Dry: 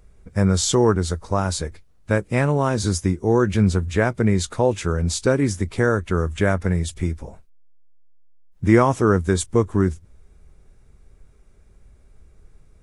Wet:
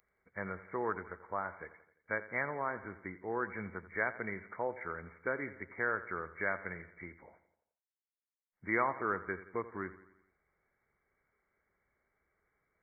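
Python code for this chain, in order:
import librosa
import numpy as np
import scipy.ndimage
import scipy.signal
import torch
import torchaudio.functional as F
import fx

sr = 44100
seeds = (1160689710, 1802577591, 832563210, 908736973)

p1 = fx.brickwall_lowpass(x, sr, high_hz=2300.0)
p2 = np.diff(p1, prepend=0.0)
p3 = p2 + fx.echo_feedback(p2, sr, ms=86, feedback_pct=54, wet_db=-15.5, dry=0)
y = p3 * 10.0 ** (5.0 / 20.0)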